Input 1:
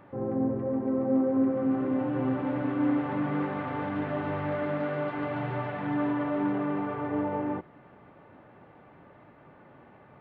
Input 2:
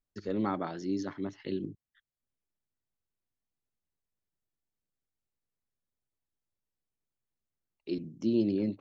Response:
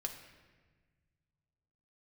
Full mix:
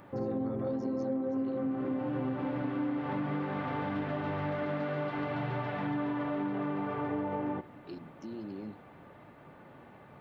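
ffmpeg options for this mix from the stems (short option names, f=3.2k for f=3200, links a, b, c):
-filter_complex "[0:a]bass=f=250:g=1,treble=f=4k:g=12,volume=-1.5dB,asplit=2[a][b];[b]volume=-11.5dB[c];[1:a]alimiter=level_in=2.5dB:limit=-24dB:level=0:latency=1,volume=-2.5dB,volume=-7.5dB[d];[2:a]atrim=start_sample=2205[e];[c][e]afir=irnorm=-1:irlink=0[f];[a][d][f]amix=inputs=3:normalize=0,acompressor=threshold=-30dB:ratio=6"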